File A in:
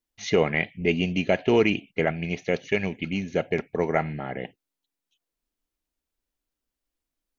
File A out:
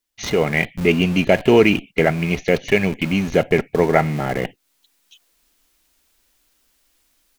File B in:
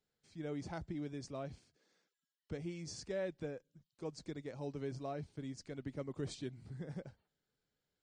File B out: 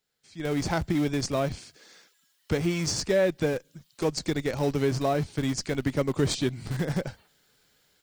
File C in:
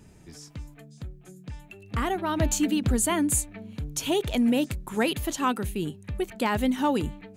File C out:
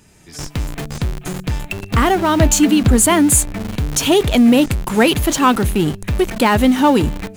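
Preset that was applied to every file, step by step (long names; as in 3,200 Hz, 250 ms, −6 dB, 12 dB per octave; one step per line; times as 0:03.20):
automatic gain control gain up to 16 dB
in parallel at −11 dB: comparator with hysteresis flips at −28 dBFS
on the sum: one half of a high-frequency compander encoder only
level −1 dB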